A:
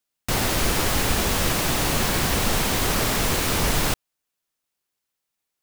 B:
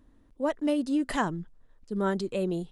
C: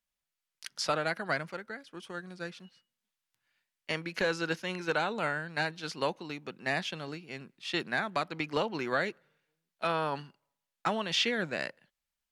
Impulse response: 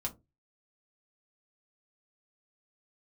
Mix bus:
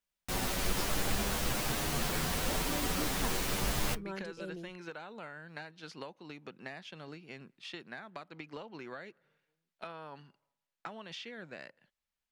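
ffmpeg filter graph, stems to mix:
-filter_complex "[0:a]asplit=2[a][b];[b]adelay=9,afreqshift=0.39[c];[a][c]amix=inputs=2:normalize=1,volume=-9.5dB,asplit=2[d][e];[e]volume=-13.5dB[f];[1:a]adelay=2050,volume=-14.5dB[g];[2:a]acompressor=threshold=-40dB:ratio=8,highshelf=f=6.4k:g=-7,volume=-1.5dB[h];[3:a]atrim=start_sample=2205[i];[f][i]afir=irnorm=-1:irlink=0[j];[d][g][h][j]amix=inputs=4:normalize=0"

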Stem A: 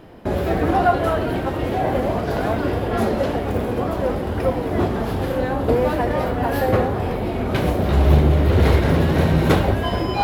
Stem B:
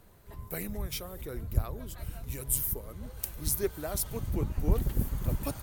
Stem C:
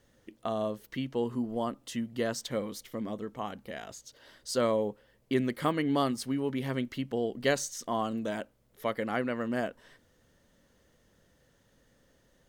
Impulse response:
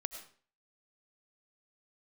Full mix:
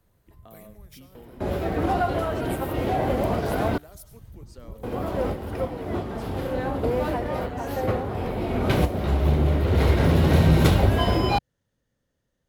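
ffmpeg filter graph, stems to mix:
-filter_complex "[0:a]bandreject=f=1.7k:w=22,adelay=1150,volume=2dB,asplit=3[a][b][c];[a]atrim=end=3.78,asetpts=PTS-STARTPTS,afade=t=out:st=3.776:d=0.004:c=hsin[d];[b]atrim=start=3.78:end=4.83,asetpts=PTS-STARTPTS,volume=0[e];[c]atrim=start=4.83,asetpts=PTS-STARTPTS,afade=t=in:d=0.004:c=hsin[f];[d][e][f]concat=n=3:v=0:a=1[g];[1:a]volume=-14dB,asplit=2[h][i];[i]volume=-4dB[j];[2:a]volume=-14.5dB,asplit=3[k][l][m];[l]volume=-13.5dB[n];[m]apad=whole_len=502068[o];[g][o]sidechaincompress=threshold=-48dB:ratio=6:attack=12:release=1050[p];[h][k]amix=inputs=2:normalize=0,equalizer=f=90:t=o:w=2.1:g=7.5,acompressor=threshold=-49dB:ratio=3,volume=0dB[q];[3:a]atrim=start_sample=2205[r];[j][n]amix=inputs=2:normalize=0[s];[s][r]afir=irnorm=-1:irlink=0[t];[p][q][t]amix=inputs=3:normalize=0,acrossover=split=160|3000[u][v][w];[v]acompressor=threshold=-20dB:ratio=6[x];[u][x][w]amix=inputs=3:normalize=0"

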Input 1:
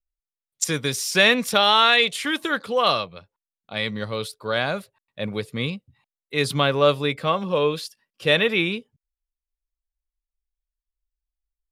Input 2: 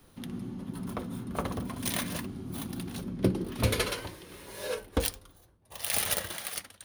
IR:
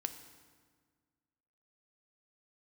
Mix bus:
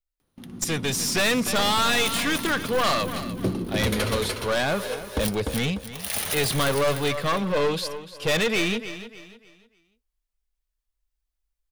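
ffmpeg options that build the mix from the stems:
-filter_complex "[0:a]aeval=exprs='clip(val(0),-1,0.0447)':c=same,volume=-1dB,asplit=2[a][b];[b]volume=-15dB[c];[1:a]agate=range=-55dB:threshold=-45dB:ratio=16:detection=peak,acompressor=mode=upward:threshold=-39dB:ratio=2.5,adelay=200,volume=-3dB,asplit=2[d][e];[e]volume=-4dB[f];[c][f]amix=inputs=2:normalize=0,aecho=0:1:297|594|891|1188:1|0.31|0.0961|0.0298[g];[a][d][g]amix=inputs=3:normalize=0,dynaudnorm=f=120:g=11:m=6dB,asoftclip=type=tanh:threshold=-16dB"

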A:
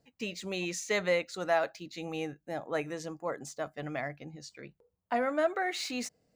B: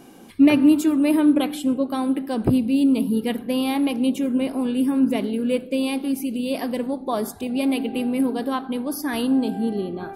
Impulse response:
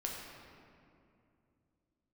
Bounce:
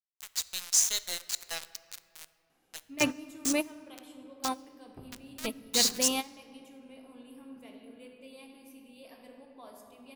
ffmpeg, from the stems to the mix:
-filter_complex "[0:a]highpass=f=240:p=1,aexciter=amount=10.8:drive=5.6:freq=3.5k,aeval=exprs='val(0)*gte(abs(val(0)),0.1)':c=same,volume=-8dB,asplit=3[a][b][c];[b]volume=-12.5dB[d];[1:a]adelay=2500,volume=-1.5dB,asplit=2[e][f];[f]volume=-22dB[g];[c]apad=whole_len=562671[h];[e][h]sidechaingate=range=-33dB:threshold=-42dB:ratio=16:detection=peak[i];[2:a]atrim=start_sample=2205[j];[d][g]amix=inputs=2:normalize=0[k];[k][j]afir=irnorm=-1:irlink=0[l];[a][i][l]amix=inputs=3:normalize=0,equalizer=f=230:w=0.55:g=-11"

